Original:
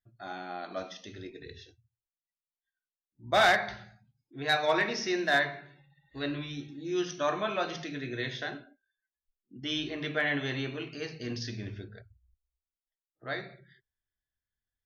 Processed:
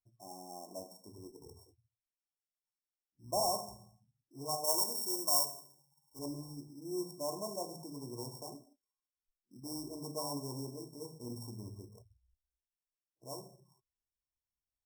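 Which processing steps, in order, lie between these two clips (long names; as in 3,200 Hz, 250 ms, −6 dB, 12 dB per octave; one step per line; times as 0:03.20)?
samples sorted by size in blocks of 16 samples
0:04.64–0:06.19: spectral tilt +3 dB per octave
brick-wall band-stop 1,100–5,200 Hz
level −7 dB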